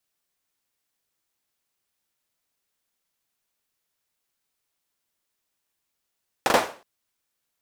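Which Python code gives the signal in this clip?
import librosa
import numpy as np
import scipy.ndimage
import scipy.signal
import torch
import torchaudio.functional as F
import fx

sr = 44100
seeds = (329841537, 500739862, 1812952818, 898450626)

y = fx.drum_clap(sr, seeds[0], length_s=0.37, bursts=3, spacing_ms=40, hz=620.0, decay_s=0.38)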